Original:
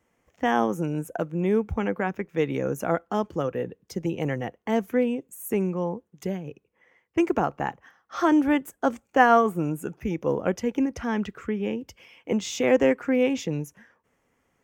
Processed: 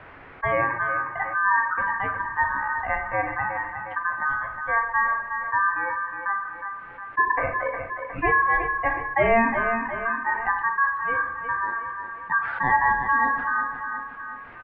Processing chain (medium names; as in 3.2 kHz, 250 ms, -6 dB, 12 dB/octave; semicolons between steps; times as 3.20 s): expander on every frequency bin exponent 2; high-pass 110 Hz 12 dB/octave; waveshaping leveller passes 1; added noise violet -47 dBFS; ring modulator 1.7 kHz; feedback delay 361 ms, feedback 32%, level -14 dB; reverberation RT60 0.60 s, pre-delay 7 ms, DRR 5.5 dB; mistuned SSB -320 Hz 200–2200 Hz; level flattener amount 50%